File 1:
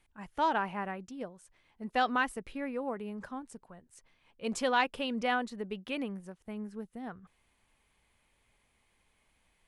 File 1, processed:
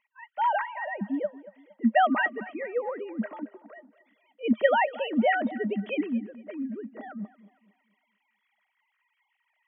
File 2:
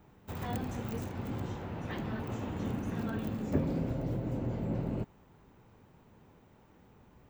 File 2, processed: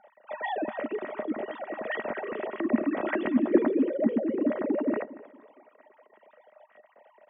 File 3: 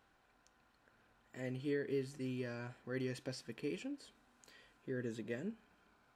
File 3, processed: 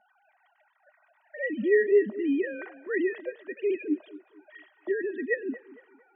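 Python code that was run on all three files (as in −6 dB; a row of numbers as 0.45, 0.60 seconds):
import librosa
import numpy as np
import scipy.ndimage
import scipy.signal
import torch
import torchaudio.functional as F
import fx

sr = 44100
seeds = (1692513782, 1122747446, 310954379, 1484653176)

y = fx.sine_speech(x, sr)
y = fx.small_body(y, sr, hz=(220.0, 610.0, 1900.0), ring_ms=65, db=15)
y = fx.echo_tape(y, sr, ms=229, feedback_pct=39, wet_db=-17, lp_hz=2800.0, drive_db=7.0, wow_cents=20)
y = y * 10.0 ** (-30 / 20.0) / np.sqrt(np.mean(np.square(y)))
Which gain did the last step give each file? +2.5, +2.5, +12.5 decibels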